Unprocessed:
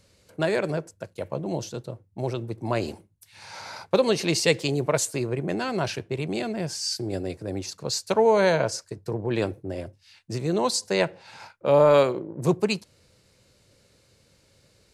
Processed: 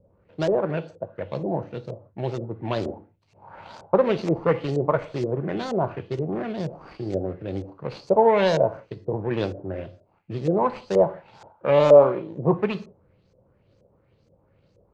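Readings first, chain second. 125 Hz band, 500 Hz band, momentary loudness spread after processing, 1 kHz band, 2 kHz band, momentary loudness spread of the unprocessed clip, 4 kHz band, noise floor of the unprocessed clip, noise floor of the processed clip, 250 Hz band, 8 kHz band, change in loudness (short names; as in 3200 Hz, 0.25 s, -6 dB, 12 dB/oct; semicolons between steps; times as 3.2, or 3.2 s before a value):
+1.0 dB, +2.5 dB, 17 LU, +2.5 dB, -4.0 dB, 16 LU, -9.0 dB, -62 dBFS, -64 dBFS, +1.0 dB, under -20 dB, +1.5 dB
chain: median filter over 25 samples; non-linear reverb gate 0.2 s falling, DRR 10.5 dB; LFO low-pass saw up 2.1 Hz 480–6900 Hz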